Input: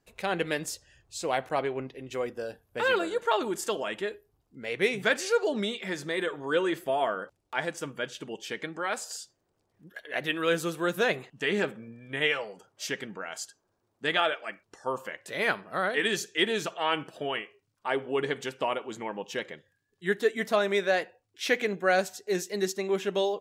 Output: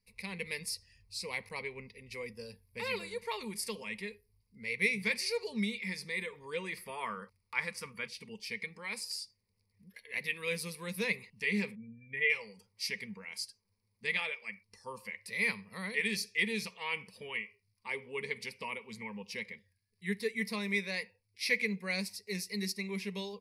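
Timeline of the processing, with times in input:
6.77–8.08 s: peaking EQ 1.3 kHz +13.5 dB 0.72 oct
11.75–12.30 s: spectral contrast enhancement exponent 1.6
whole clip: high-order bell 630 Hz -14 dB 2.9 oct; level rider gain up to 3 dB; rippled EQ curve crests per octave 0.89, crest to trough 16 dB; trim -6.5 dB

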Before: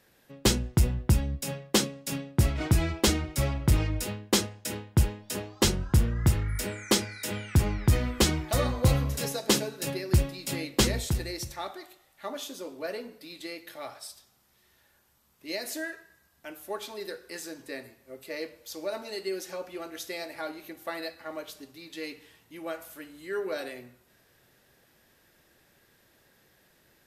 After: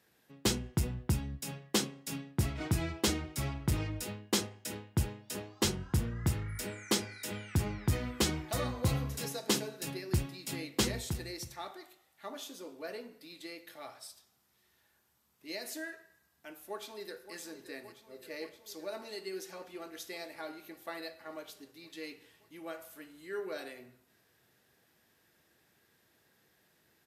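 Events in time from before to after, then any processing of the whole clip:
16.59–17.35 s: echo throw 570 ms, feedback 80%, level -12 dB
whole clip: high-pass 78 Hz; band-stop 560 Hz, Q 12; de-hum 128.8 Hz, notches 25; trim -6 dB

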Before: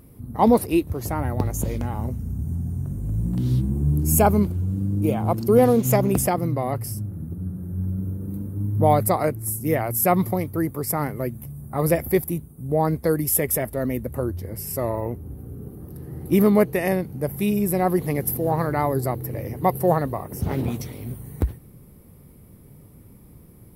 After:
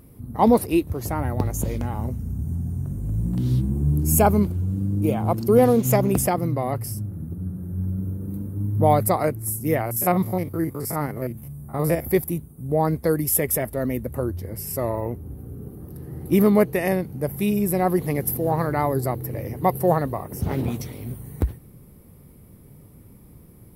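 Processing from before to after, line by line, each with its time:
9.81–12.05 s: spectrogram pixelated in time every 50 ms

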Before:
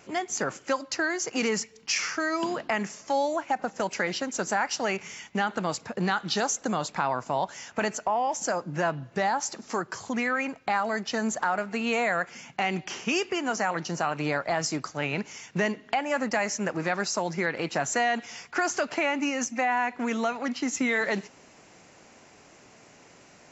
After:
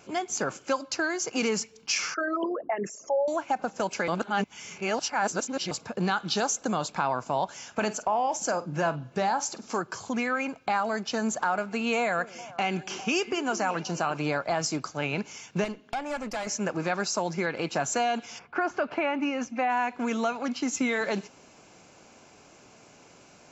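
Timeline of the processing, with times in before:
2.14–3.28 s: resonances exaggerated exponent 3
4.08–5.71 s: reverse
7.57–9.79 s: doubling 47 ms -14 dB
11.98–14.20 s: repeats whose band climbs or falls 201 ms, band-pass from 330 Hz, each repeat 1.4 oct, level -11 dB
15.64–16.47 s: valve stage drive 24 dB, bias 0.75
18.38–19.68 s: low-pass 1.7 kHz -> 3.6 kHz
whole clip: band-stop 1.9 kHz, Q 5.6

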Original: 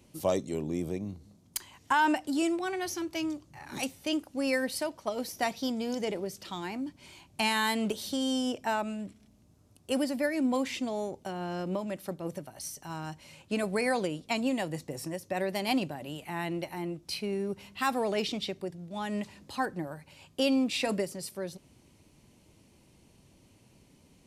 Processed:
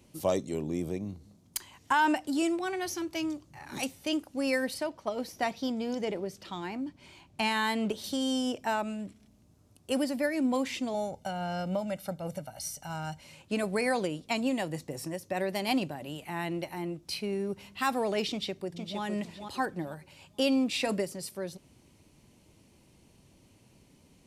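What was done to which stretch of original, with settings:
4.74–8.04 s: treble shelf 5.8 kHz -9.5 dB
10.94–13.21 s: comb 1.4 ms, depth 68%
18.30–19.02 s: echo throw 460 ms, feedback 25%, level -6 dB

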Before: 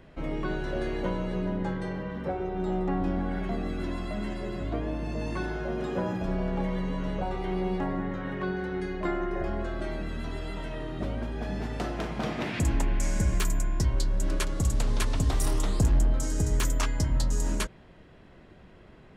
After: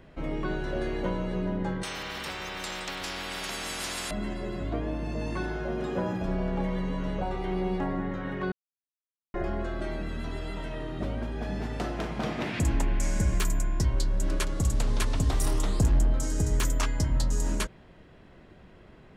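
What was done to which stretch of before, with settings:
1.83–4.11 s: spectrum-flattening compressor 10:1
8.52–9.34 s: mute

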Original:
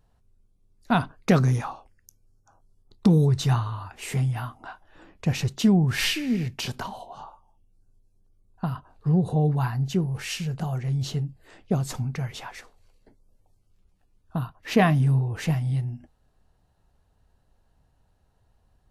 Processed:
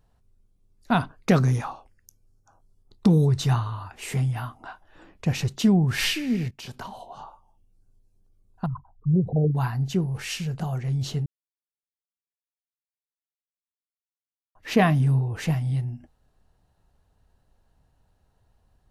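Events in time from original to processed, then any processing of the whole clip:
6.51–7.11 s: fade in linear, from -14.5 dB
8.66–9.55 s: resonances exaggerated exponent 3
11.26–14.55 s: mute

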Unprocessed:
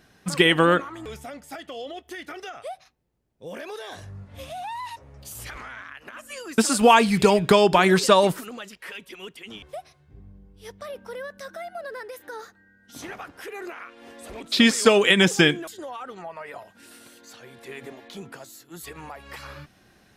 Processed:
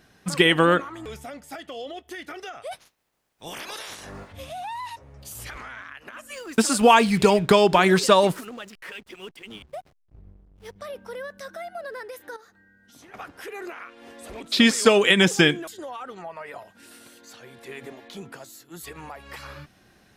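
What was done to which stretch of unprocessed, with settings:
2.71–4.31 s: spectral peaks clipped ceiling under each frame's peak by 25 dB
6.32–10.76 s: hysteresis with a dead band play -43 dBFS
12.36–13.14 s: compression 2.5:1, threshold -53 dBFS

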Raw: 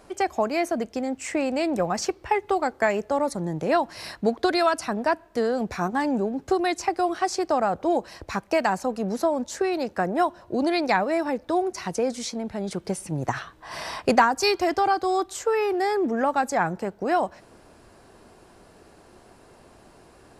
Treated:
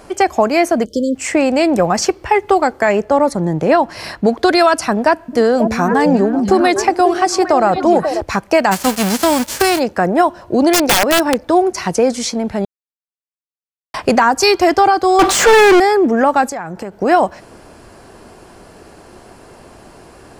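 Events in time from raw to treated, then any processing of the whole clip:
0.85–1.15 s: spectral selection erased 610–3000 Hz
2.89–4.27 s: treble shelf 4.2 kHz -6.5 dB
5.01–8.21 s: repeats whose band climbs or falls 270 ms, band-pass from 190 Hz, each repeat 1.4 oct, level -2 dB
8.71–9.78 s: formants flattened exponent 0.3
10.72–11.47 s: integer overflow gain 16.5 dB
12.65–13.94 s: mute
15.19–15.80 s: overdrive pedal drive 38 dB, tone 3.1 kHz, clips at -13.5 dBFS
16.48–16.97 s: compression, threshold -33 dBFS
whole clip: band-stop 3.8 kHz, Q 19; loudness maximiser +12.5 dB; trim -1 dB

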